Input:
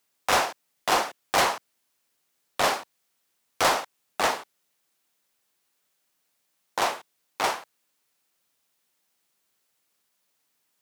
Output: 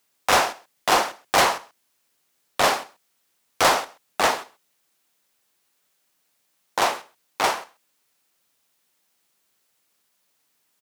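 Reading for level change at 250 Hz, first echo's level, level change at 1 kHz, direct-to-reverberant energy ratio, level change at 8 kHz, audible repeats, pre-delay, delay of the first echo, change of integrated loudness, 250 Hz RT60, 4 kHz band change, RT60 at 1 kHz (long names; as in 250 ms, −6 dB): +4.0 dB, −23.0 dB, +4.0 dB, no reverb audible, +4.0 dB, 1, no reverb audible, 131 ms, +3.5 dB, no reverb audible, +4.0 dB, no reverb audible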